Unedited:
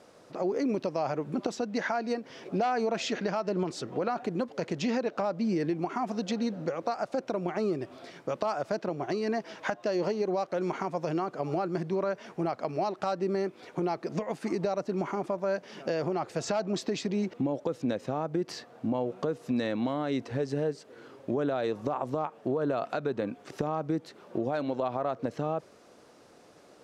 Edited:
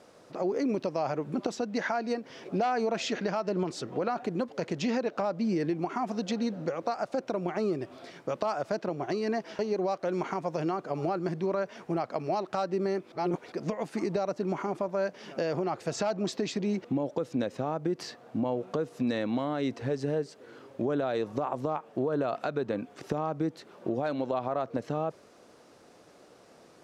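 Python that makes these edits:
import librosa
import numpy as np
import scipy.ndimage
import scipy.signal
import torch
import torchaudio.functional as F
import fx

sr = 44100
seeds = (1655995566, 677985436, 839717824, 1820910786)

y = fx.edit(x, sr, fx.cut(start_s=9.59, length_s=0.49),
    fx.reverse_span(start_s=13.61, length_s=0.4), tone=tone)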